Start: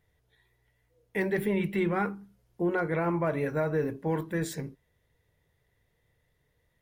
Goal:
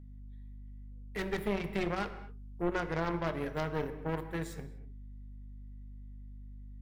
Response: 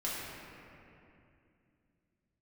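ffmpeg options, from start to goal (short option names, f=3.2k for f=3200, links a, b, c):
-filter_complex "[0:a]aeval=exprs='0.133*(cos(1*acos(clip(val(0)/0.133,-1,1)))-cos(1*PI/2))+0.0596*(cos(4*acos(clip(val(0)/0.133,-1,1)))-cos(4*PI/2))+0.0473*(cos(6*acos(clip(val(0)/0.133,-1,1)))-cos(6*PI/2))+0.00841*(cos(7*acos(clip(val(0)/0.133,-1,1)))-cos(7*PI/2))+0.00841*(cos(8*acos(clip(val(0)/0.133,-1,1)))-cos(8*PI/2))':c=same,aeval=exprs='val(0)+0.00891*(sin(2*PI*50*n/s)+sin(2*PI*2*50*n/s)/2+sin(2*PI*3*50*n/s)/3+sin(2*PI*4*50*n/s)/4+sin(2*PI*5*50*n/s)/5)':c=same,asplit=2[a][b];[1:a]atrim=start_sample=2205,afade=t=out:st=0.3:d=0.01,atrim=end_sample=13671[c];[b][c]afir=irnorm=-1:irlink=0,volume=-11.5dB[d];[a][d]amix=inputs=2:normalize=0,volume=-8.5dB"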